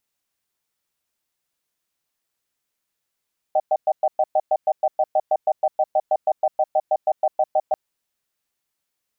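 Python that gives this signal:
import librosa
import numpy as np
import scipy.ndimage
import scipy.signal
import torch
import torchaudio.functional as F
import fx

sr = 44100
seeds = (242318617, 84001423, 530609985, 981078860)

y = fx.cadence(sr, length_s=4.19, low_hz=620.0, high_hz=769.0, on_s=0.05, off_s=0.11, level_db=-17.5)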